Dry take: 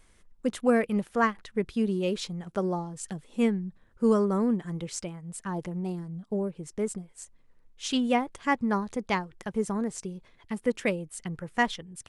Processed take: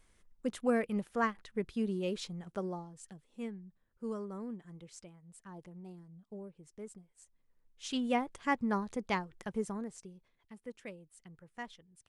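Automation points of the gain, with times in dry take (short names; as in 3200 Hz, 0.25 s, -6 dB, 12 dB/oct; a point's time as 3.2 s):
2.45 s -7 dB
3.26 s -16.5 dB
7.14 s -16.5 dB
8.21 s -5.5 dB
9.52 s -5.5 dB
9.93 s -12.5 dB
10.56 s -19 dB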